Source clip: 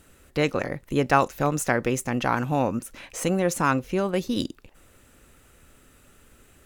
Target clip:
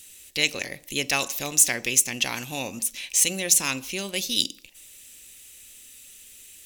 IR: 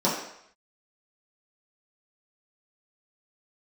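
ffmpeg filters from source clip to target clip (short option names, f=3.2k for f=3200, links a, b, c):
-filter_complex "[0:a]aexciter=amount=14.4:drive=3.3:freq=2.1k,asplit=2[a][b];[1:a]atrim=start_sample=2205,afade=t=out:st=0.26:d=0.01,atrim=end_sample=11907[c];[b][c]afir=irnorm=-1:irlink=0,volume=-28.5dB[d];[a][d]amix=inputs=2:normalize=0,volume=-11dB"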